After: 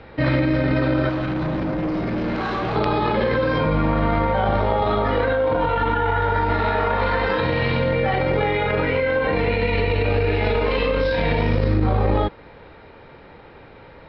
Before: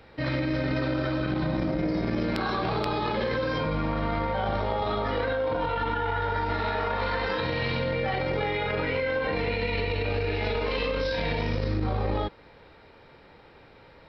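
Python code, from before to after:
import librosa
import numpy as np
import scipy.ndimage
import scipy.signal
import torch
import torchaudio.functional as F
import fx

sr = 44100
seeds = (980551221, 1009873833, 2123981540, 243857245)

y = fx.rider(x, sr, range_db=10, speed_s=0.5)
y = fx.clip_hard(y, sr, threshold_db=-29.0, at=(1.09, 2.76))
y = fx.air_absorb(y, sr, metres=220.0)
y = y * 10.0 ** (8.5 / 20.0)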